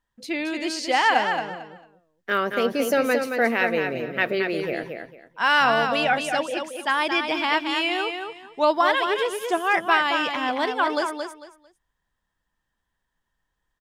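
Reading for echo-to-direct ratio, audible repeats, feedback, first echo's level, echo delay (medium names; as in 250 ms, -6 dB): -6.0 dB, 3, 23%, -6.0 dB, 224 ms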